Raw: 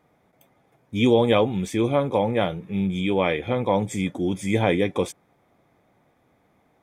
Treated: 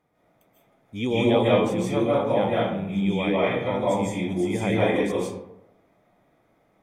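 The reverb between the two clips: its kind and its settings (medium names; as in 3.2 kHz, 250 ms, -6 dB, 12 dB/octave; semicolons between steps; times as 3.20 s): algorithmic reverb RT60 0.82 s, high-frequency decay 0.5×, pre-delay 115 ms, DRR -7 dB; trim -8 dB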